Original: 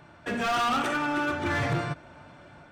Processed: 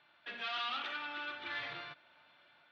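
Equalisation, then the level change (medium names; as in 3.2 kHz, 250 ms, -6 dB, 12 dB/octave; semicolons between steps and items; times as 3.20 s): band-pass filter 3.8 kHz, Q 2.5; distance through air 330 m; +5.5 dB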